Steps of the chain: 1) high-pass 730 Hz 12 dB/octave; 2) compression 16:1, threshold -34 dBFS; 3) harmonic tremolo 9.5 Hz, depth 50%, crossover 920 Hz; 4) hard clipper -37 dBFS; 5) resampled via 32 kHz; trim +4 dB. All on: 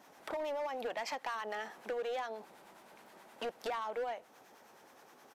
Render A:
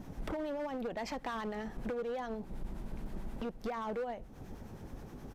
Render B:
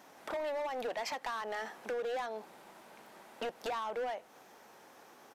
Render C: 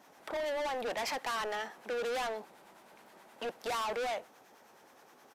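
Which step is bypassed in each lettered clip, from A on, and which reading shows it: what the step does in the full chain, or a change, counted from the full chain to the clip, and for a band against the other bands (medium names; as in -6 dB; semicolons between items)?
1, 250 Hz band +15.5 dB; 3, momentary loudness spread change -1 LU; 2, mean gain reduction 9.0 dB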